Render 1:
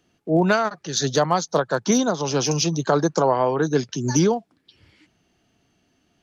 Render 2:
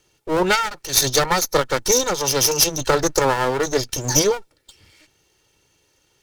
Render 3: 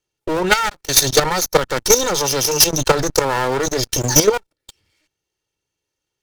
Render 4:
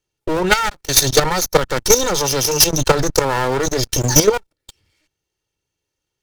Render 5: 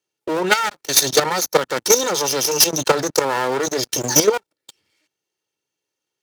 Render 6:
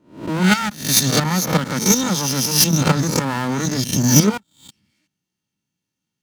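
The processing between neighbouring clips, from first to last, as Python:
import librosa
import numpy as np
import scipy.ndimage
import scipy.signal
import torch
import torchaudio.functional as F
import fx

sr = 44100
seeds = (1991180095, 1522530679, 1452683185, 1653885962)

y1 = fx.lower_of_two(x, sr, delay_ms=2.2)
y1 = fx.high_shelf(y1, sr, hz=3900.0, db=11.5)
y1 = y1 * 10.0 ** (2.0 / 20.0)
y2 = fx.level_steps(y1, sr, step_db=15)
y2 = fx.leveller(y2, sr, passes=3)
y3 = fx.low_shelf(y2, sr, hz=150.0, db=5.5)
y4 = scipy.signal.sosfilt(scipy.signal.butter(2, 230.0, 'highpass', fs=sr, output='sos'), y3)
y4 = y4 * 10.0 ** (-1.5 / 20.0)
y5 = fx.spec_swells(y4, sr, rise_s=0.43)
y5 = fx.low_shelf_res(y5, sr, hz=300.0, db=12.0, q=3.0)
y5 = y5 * 10.0 ** (-3.0 / 20.0)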